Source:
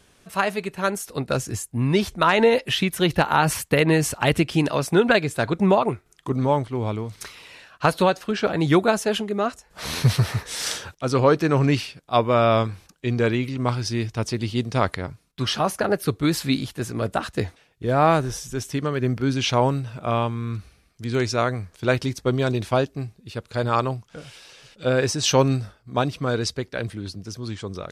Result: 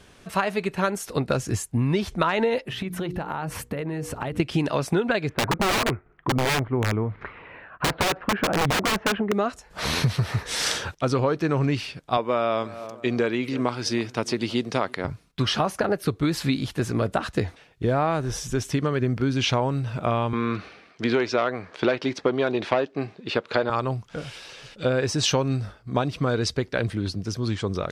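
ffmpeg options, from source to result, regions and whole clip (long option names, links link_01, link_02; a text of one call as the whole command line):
ffmpeg -i in.wav -filter_complex "[0:a]asettb=1/sr,asplit=3[link_01][link_02][link_03];[link_01]atrim=end=2.624[link_04];[link_02]atrim=start=2.62:end=4.4,asetpts=PTS-STARTPTS,afade=type=in:duration=0.004:curve=qsin,afade=type=out:start_time=1.776:duration=0.004:curve=qsin,equalizer=frequency=4800:width=0.39:gain=-8.5,bandreject=frequency=60:width_type=h:width=6,bandreject=frequency=120:width_type=h:width=6,bandreject=frequency=180:width_type=h:width=6,bandreject=frequency=240:width_type=h:width=6,bandreject=frequency=300:width_type=h:width=6,bandreject=frequency=360:width_type=h:width=6,bandreject=frequency=420:width_type=h:width=6,bandreject=frequency=480:width_type=h:width=6,acompressor=threshold=-31dB:ratio=16:attack=3.2:release=140:knee=1:detection=peak[link_05];[link_03]atrim=start=4.396[link_06];[link_04][link_05]acrossfade=duration=0.004:curve1=hsin:curve2=qsin[link_07];[link_07][link_06]acrossfade=duration=0.004:curve1=qsin:curve2=hsin,asettb=1/sr,asplit=3[link_08][link_09][link_10];[link_08]atrim=end=5.294[link_11];[link_09]atrim=start=5.29:end=9.32,asetpts=PTS-STARTPTS,afade=type=in:duration=0.004:curve=qsin,afade=type=out:start_time=4.026:duration=0.004:curve=qsin,lowpass=frequency=2000:width=0.5412,lowpass=frequency=2000:width=1.3066,aeval=exprs='(mod(7.08*val(0)+1,2)-1)/7.08':channel_layout=same[link_12];[link_10]atrim=start=9.316[link_13];[link_11][link_12]acrossfade=duration=0.004:curve1=hsin:curve2=qsin[link_14];[link_14][link_13]acrossfade=duration=0.004:curve1=qsin:curve2=hsin,asettb=1/sr,asplit=3[link_15][link_16][link_17];[link_15]atrim=end=12.174[link_18];[link_16]atrim=start=12.17:end=15.05,asetpts=PTS-STARTPTS,afade=type=in:duration=0.004:curve=qsin,afade=type=out:start_time=2.876:duration=0.004:curve=qsin,highpass=230,asplit=2[link_19][link_20];[link_20]adelay=320,lowpass=frequency=1500:poles=1,volume=-22.5dB,asplit=2[link_21][link_22];[link_22]adelay=320,lowpass=frequency=1500:poles=1,volume=0.36[link_23];[link_19][link_21][link_23]amix=inputs=3:normalize=0,atrim=end_sample=127008[link_24];[link_17]atrim=start=15.046[link_25];[link_18][link_24]acrossfade=duration=0.004:curve1=hsin:curve2=qsin[link_26];[link_26][link_25]acrossfade=duration=0.004:curve1=qsin:curve2=hsin,asettb=1/sr,asplit=3[link_27][link_28][link_29];[link_27]atrim=end=20.334[link_30];[link_28]atrim=start=20.33:end=23.7,asetpts=PTS-STARTPTS,afade=type=in:duration=0.004:curve=qsin,afade=type=out:start_time=3.366:duration=0.004:curve=qsin,aeval=exprs='0.531*sin(PI/2*2*val(0)/0.531)':channel_layout=same,highpass=320,lowpass=3600[link_31];[link_29]atrim=start=23.696[link_32];[link_30][link_31]acrossfade=duration=0.004:curve1=hsin:curve2=qsin[link_33];[link_33][link_32]acrossfade=duration=0.004:curve1=qsin:curve2=hsin,highshelf=frequency=7000:gain=-9.5,acompressor=threshold=-26dB:ratio=6,volume=6dB" out.wav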